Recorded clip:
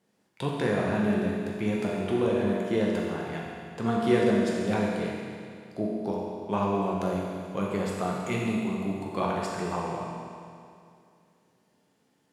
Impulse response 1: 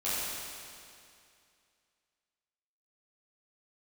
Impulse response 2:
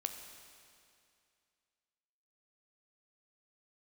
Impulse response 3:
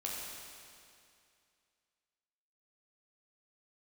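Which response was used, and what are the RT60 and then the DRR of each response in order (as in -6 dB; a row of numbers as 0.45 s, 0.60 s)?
3; 2.4 s, 2.4 s, 2.4 s; -12.0 dB, 5.5 dB, -4.0 dB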